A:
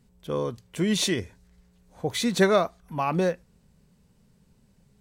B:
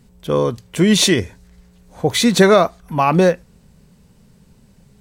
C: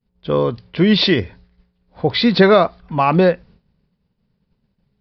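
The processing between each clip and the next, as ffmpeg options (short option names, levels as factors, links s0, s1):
-af "alimiter=level_in=3.98:limit=0.891:release=50:level=0:latency=1,volume=0.891"
-af "agate=range=0.0224:threshold=0.0126:ratio=3:detection=peak,aresample=11025,aresample=44100"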